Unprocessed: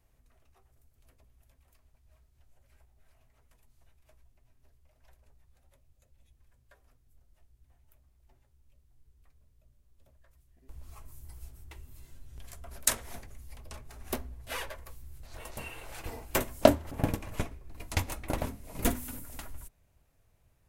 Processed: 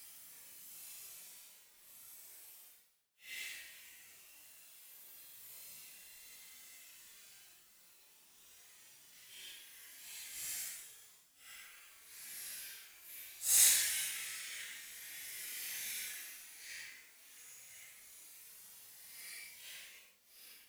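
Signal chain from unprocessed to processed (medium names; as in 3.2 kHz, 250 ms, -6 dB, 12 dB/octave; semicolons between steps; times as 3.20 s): steep high-pass 1.8 kHz 36 dB/octave; in parallel at +2 dB: compressor with a negative ratio -48 dBFS, ratio -1; on the sum: companded quantiser 4-bit; Paulstretch 8.8×, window 0.05 s, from 11.33 s; trim -5 dB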